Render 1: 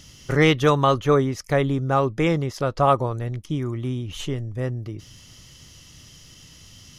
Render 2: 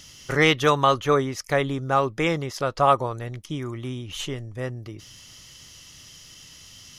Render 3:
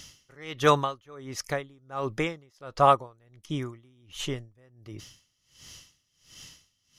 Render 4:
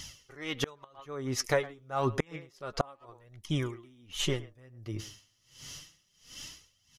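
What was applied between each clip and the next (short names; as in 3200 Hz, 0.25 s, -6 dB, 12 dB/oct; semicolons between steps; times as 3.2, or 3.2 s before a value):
low shelf 480 Hz -9 dB; gain +2.5 dB
dB-linear tremolo 1.4 Hz, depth 29 dB
speakerphone echo 0.11 s, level -17 dB; flange 0.29 Hz, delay 0.9 ms, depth 9.1 ms, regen +34%; flipped gate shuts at -20 dBFS, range -34 dB; gain +6.5 dB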